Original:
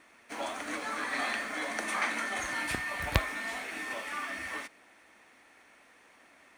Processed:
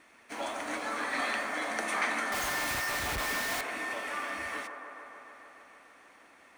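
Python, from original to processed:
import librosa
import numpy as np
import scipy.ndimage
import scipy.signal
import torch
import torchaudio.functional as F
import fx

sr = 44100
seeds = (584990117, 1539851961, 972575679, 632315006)

y = fx.clip_1bit(x, sr, at=(2.32, 3.61))
y = fx.echo_wet_bandpass(y, sr, ms=148, feedback_pct=78, hz=720.0, wet_db=-5)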